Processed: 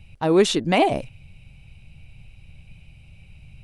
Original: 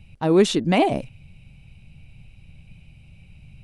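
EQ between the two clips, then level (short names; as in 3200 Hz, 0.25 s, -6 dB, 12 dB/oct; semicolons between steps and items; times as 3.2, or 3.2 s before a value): bell 210 Hz -5.5 dB 1.4 oct; +2.0 dB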